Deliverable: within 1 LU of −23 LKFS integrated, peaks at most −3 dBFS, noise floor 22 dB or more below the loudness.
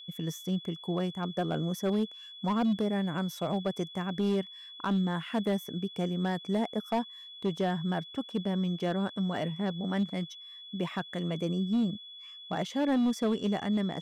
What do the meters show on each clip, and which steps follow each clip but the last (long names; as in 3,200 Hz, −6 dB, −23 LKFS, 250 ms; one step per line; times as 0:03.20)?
share of clipped samples 1.5%; peaks flattened at −23.0 dBFS; interfering tone 3,400 Hz; level of the tone −45 dBFS; integrated loudness −32.0 LKFS; sample peak −23.0 dBFS; target loudness −23.0 LKFS
→ clipped peaks rebuilt −23 dBFS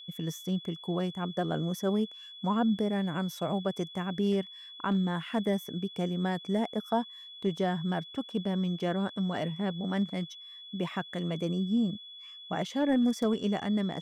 share of clipped samples 0.0%; interfering tone 3,400 Hz; level of the tone −45 dBFS
→ notch filter 3,400 Hz, Q 30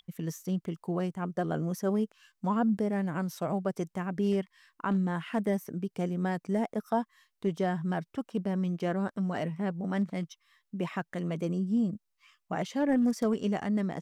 interfering tone none found; integrated loudness −31.5 LKFS; sample peak −17.0 dBFS; target loudness −23.0 LKFS
→ level +8.5 dB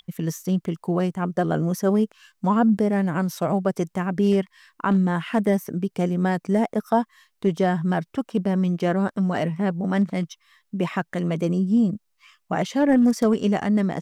integrated loudness −23.0 LKFS; sample peak −8.5 dBFS; background noise floor −72 dBFS